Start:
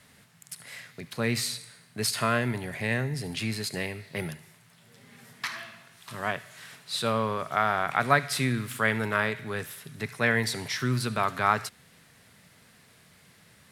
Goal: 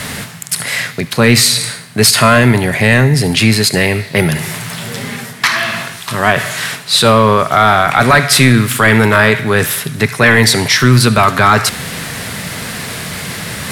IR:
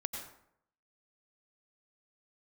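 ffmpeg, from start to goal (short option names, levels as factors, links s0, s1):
-af "areverse,acompressor=mode=upward:threshold=0.0282:ratio=2.5,areverse,apsyclip=13.3,volume=0.841"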